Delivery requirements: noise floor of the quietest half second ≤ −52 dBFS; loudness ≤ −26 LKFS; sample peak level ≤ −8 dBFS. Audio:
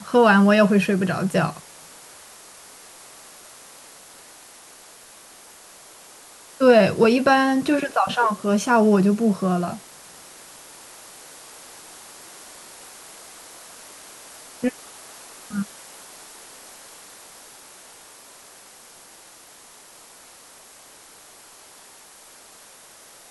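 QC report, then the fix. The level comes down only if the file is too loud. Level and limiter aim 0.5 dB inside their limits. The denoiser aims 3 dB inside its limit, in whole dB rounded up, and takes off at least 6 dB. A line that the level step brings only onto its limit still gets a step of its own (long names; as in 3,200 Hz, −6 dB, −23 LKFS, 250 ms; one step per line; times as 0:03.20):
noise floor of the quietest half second −47 dBFS: out of spec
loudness −19.0 LKFS: out of spec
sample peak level −4.5 dBFS: out of spec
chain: level −7.5 dB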